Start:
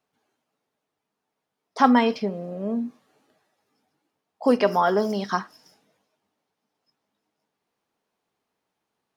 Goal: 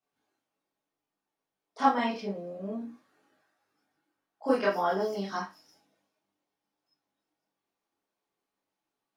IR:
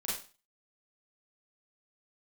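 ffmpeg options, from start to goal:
-filter_complex "[0:a]asettb=1/sr,asplit=3[s0][s1][s2];[s0]atrim=end=2.784[s3];[s1]atrim=start=2.78:end=4.69,asetpts=PTS-STARTPTS,afade=t=in:d=0.004:c=qsin,afade=t=out:st=1.906:d=0.004:c=qsin,equalizer=f=1500:t=o:w=0.69:g=8[s4];[s2]atrim=start=4.686[s5];[s3][s4]acrossfade=d=0.004:c1=hsin:c2=qsin[s6];[s6][s5]acrossfade=d=0.004:c1=qsin:c2=hsin[s7];[1:a]atrim=start_sample=2205,asetrate=70560,aresample=44100[s8];[s7][s8]afir=irnorm=-1:irlink=0,volume=0.531"

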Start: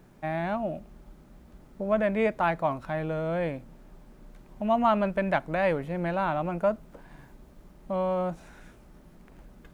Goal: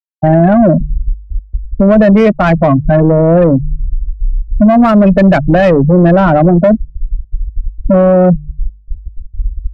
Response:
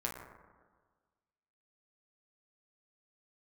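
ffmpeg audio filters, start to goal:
-filter_complex "[0:a]equalizer=f=730:w=0.35:g=-11,afftfilt=real='re*gte(hypot(re,im),0.0355)':imag='im*gte(hypot(re,im),0.0355)':win_size=1024:overlap=0.75,bandreject=f=49.59:t=h:w=4,bandreject=f=99.18:t=h:w=4,bandreject=f=148.77:t=h:w=4,asplit=2[s0][s1];[s1]asoftclip=type=hard:threshold=0.0335,volume=0.316[s2];[s0][s2]amix=inputs=2:normalize=0,acrossover=split=230|2700[s3][s4][s5];[s3]acompressor=threshold=0.00355:ratio=4[s6];[s4]acompressor=threshold=0.0178:ratio=4[s7];[s5]acompressor=threshold=0.00282:ratio=4[s8];[s6][s7][s8]amix=inputs=3:normalize=0,bandreject=f=890:w=5.8,asoftclip=type=tanh:threshold=0.015,tiltshelf=f=1200:g=5.5,alimiter=level_in=59.6:limit=0.891:release=50:level=0:latency=1,volume=0.891"

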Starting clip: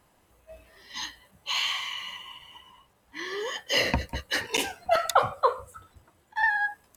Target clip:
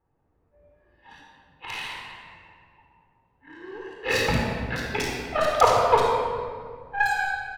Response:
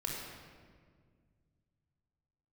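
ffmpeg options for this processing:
-filter_complex "[0:a]aeval=exprs='0.422*(cos(1*acos(clip(val(0)/0.422,-1,1)))-cos(1*PI/2))+0.0473*(cos(7*acos(clip(val(0)/0.422,-1,1)))-cos(7*PI/2))':c=same,adynamicsmooth=sensitivity=4.5:basefreq=1800,acrossover=split=3300[s0][s1];[s1]adelay=50[s2];[s0][s2]amix=inputs=2:normalize=0[s3];[1:a]atrim=start_sample=2205[s4];[s3][s4]afir=irnorm=-1:irlink=0,asetrate=40517,aresample=44100,volume=1.68"

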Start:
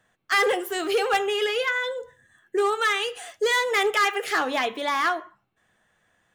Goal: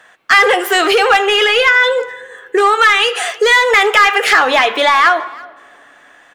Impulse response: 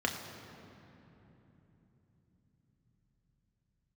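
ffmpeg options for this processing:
-filter_complex "[0:a]lowshelf=f=380:g=-8,acompressor=threshold=0.0355:ratio=4,asplit=2[s0][s1];[s1]highpass=f=720:p=1,volume=14.1,asoftclip=type=tanh:threshold=0.631[s2];[s0][s2]amix=inputs=2:normalize=0,lowpass=f=3200:p=1,volume=0.501,asplit=2[s3][s4];[s4]adelay=330,highpass=300,lowpass=3400,asoftclip=type=hard:threshold=0.224,volume=0.0794[s5];[s3][s5]amix=inputs=2:normalize=0,asplit=2[s6][s7];[1:a]atrim=start_sample=2205[s8];[s7][s8]afir=irnorm=-1:irlink=0,volume=0.0501[s9];[s6][s9]amix=inputs=2:normalize=0,volume=2.24"

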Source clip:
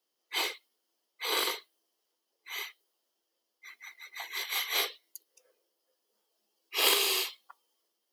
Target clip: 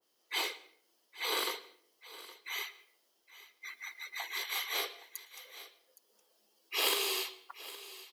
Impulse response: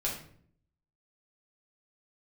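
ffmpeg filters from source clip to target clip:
-filter_complex "[0:a]acompressor=threshold=0.00224:ratio=1.5,aecho=1:1:816:0.133,asplit=2[s0][s1];[1:a]atrim=start_sample=2205,highshelf=f=9300:g=-11,adelay=111[s2];[s1][s2]afir=irnorm=-1:irlink=0,volume=0.0794[s3];[s0][s3]amix=inputs=2:normalize=0,adynamicequalizer=threshold=0.00316:dfrequency=1700:dqfactor=0.7:tfrequency=1700:tqfactor=0.7:attack=5:release=100:ratio=0.375:range=2:mode=cutabove:tftype=highshelf,volume=2.11"

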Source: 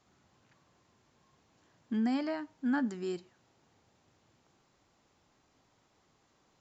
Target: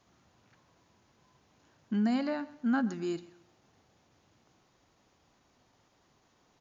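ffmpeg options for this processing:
-af "asetrate=41625,aresample=44100,atempo=1.05946,aecho=1:1:129|258|387:0.112|0.0381|0.013,volume=1.26"

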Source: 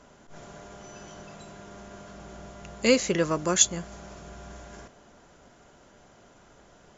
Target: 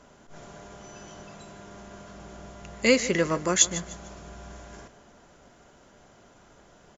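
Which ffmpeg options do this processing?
-filter_complex "[0:a]asettb=1/sr,asplit=3[s0][s1][s2];[s0]atrim=end=2.734[s3];[s1]atrim=start=2.73:end=3.83,asetpts=PTS-STARTPTS,afade=t=in:d=0.004:c=qsin,afade=t=out:st=1.096:d=0.004:c=qsin,equalizer=f=2000:w=5.2:g=7.5[s4];[s2]atrim=start=3.826[s5];[s3][s4]acrossfade=d=0.004:c1=hsin:c2=qsin[s6];[s6][s5]acrossfade=d=0.004:c1=qsin:c2=hsin,aecho=1:1:151|302|453:0.158|0.0523|0.0173"

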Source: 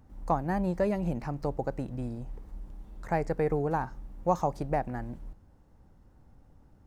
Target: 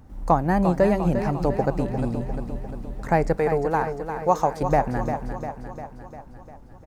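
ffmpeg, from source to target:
-filter_complex "[0:a]asettb=1/sr,asplit=3[s0][s1][s2];[s0]atrim=end=3.364[s3];[s1]atrim=start=3.36:end=4.62,asetpts=PTS-STARTPTS,afade=t=in:d=0.004:c=qsin,afade=t=out:st=1.256:d=0.004:c=qsin,lowshelf=f=290:g=-11[s4];[s2]atrim=start=4.616[s5];[s3][s4]acrossfade=d=0.004:c1=hsin:c2=qsin[s6];[s6][s5]acrossfade=d=0.004:c1=qsin:c2=hsin,aecho=1:1:350|700|1050|1400|1750|2100|2450:0.376|0.222|0.131|0.0772|0.0455|0.0269|0.0159,volume=2.66"

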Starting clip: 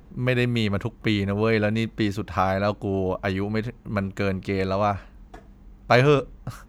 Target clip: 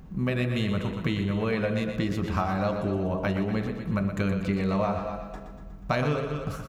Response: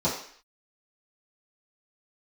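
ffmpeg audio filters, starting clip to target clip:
-filter_complex "[0:a]aecho=1:1:236:0.15,asplit=2[s0][s1];[1:a]atrim=start_sample=2205,lowpass=3100[s2];[s1][s2]afir=irnorm=-1:irlink=0,volume=0.133[s3];[s0][s3]amix=inputs=2:normalize=0,acompressor=threshold=0.0631:ratio=5,asplit=2[s4][s5];[s5]aecho=0:1:121|242|363|484|605|726|847:0.376|0.218|0.126|0.0733|0.0425|0.0247|0.0143[s6];[s4][s6]amix=inputs=2:normalize=0"

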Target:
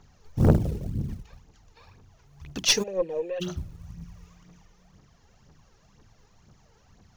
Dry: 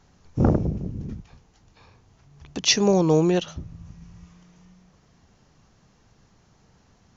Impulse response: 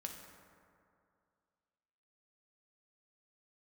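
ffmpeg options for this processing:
-filter_complex "[0:a]bandreject=f=60:t=h:w=6,bandreject=f=120:t=h:w=6,bandreject=f=180:t=h:w=6,bandreject=f=240:t=h:w=6,bandreject=f=300:t=h:w=6,bandreject=f=360:t=h:w=6,acrusher=bits=7:mode=log:mix=0:aa=0.000001,aphaser=in_gain=1:out_gain=1:delay=2.5:decay=0.6:speed=2:type=triangular,aeval=exprs='0.75*(cos(1*acos(clip(val(0)/0.75,-1,1)))-cos(1*PI/2))+0.0376*(cos(6*acos(clip(val(0)/0.75,-1,1)))-cos(6*PI/2))':c=same,asplit=3[s0][s1][s2];[s0]afade=t=out:st=2.82:d=0.02[s3];[s1]asplit=3[s4][s5][s6];[s4]bandpass=f=530:t=q:w=8,volume=1[s7];[s5]bandpass=f=1840:t=q:w=8,volume=0.501[s8];[s6]bandpass=f=2480:t=q:w=8,volume=0.355[s9];[s7][s8][s9]amix=inputs=3:normalize=0,afade=t=in:st=2.82:d=0.02,afade=t=out:st=3.4:d=0.02[s10];[s2]afade=t=in:st=3.4:d=0.02[s11];[s3][s10][s11]amix=inputs=3:normalize=0,aeval=exprs='(tanh(2.82*val(0)+0.55)-tanh(0.55))/2.82':c=same"

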